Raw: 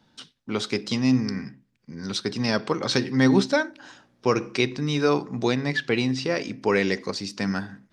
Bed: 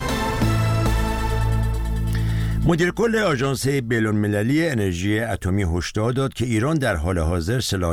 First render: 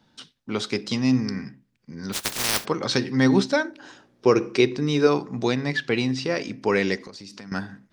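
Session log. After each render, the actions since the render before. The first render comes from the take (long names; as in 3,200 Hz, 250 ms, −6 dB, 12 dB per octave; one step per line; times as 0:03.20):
0:02.12–0:02.64: compressing power law on the bin magnitudes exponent 0.14
0:03.65–0:05.07: parametric band 390 Hz +7 dB
0:06.96–0:07.52: downward compressor 16 to 1, threshold −36 dBFS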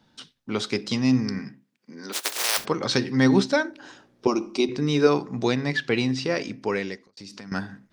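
0:01.39–0:02.57: high-pass filter 120 Hz → 480 Hz 24 dB per octave
0:04.27–0:04.69: phaser with its sweep stopped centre 460 Hz, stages 6
0:06.42–0:07.17: fade out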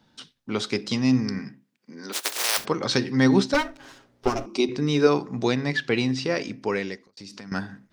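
0:03.54–0:04.46: lower of the sound and its delayed copy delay 7.4 ms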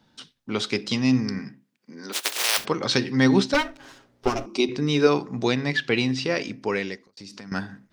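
dynamic equaliser 2,900 Hz, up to +4 dB, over −39 dBFS, Q 1.3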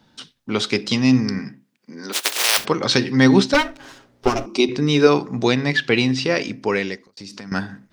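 level +5 dB
brickwall limiter −1 dBFS, peak gain reduction 1 dB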